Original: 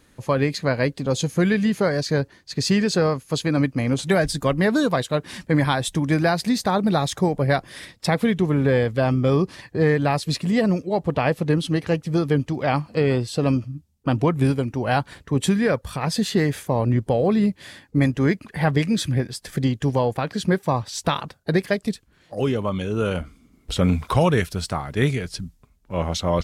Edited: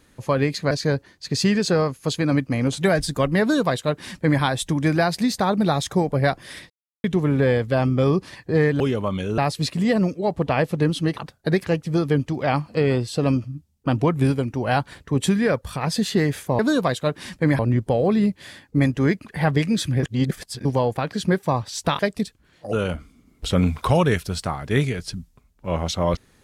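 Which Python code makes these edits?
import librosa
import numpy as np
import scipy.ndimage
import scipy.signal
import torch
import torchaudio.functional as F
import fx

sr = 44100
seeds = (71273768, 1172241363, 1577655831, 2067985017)

y = fx.edit(x, sr, fx.cut(start_s=0.71, length_s=1.26),
    fx.duplicate(start_s=4.67, length_s=1.0, to_s=16.79),
    fx.silence(start_s=7.96, length_s=0.34),
    fx.reverse_span(start_s=19.23, length_s=0.62),
    fx.move(start_s=21.19, length_s=0.48, to_s=11.85),
    fx.move(start_s=22.41, length_s=0.58, to_s=10.06), tone=tone)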